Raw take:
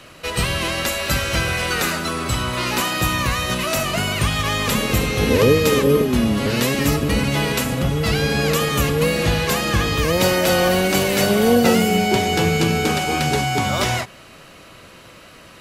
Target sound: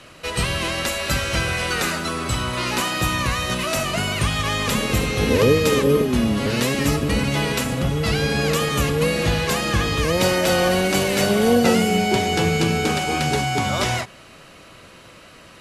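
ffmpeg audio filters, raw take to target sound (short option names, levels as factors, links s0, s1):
-af "lowpass=f=12000:w=0.5412,lowpass=f=12000:w=1.3066,volume=0.841"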